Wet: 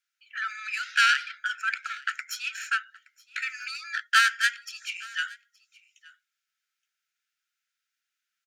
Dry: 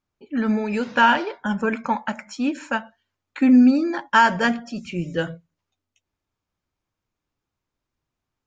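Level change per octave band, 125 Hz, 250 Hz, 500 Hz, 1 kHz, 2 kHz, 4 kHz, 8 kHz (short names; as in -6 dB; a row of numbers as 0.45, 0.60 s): under -40 dB, under -40 dB, under -40 dB, -9.0 dB, 0.0 dB, +3.0 dB, n/a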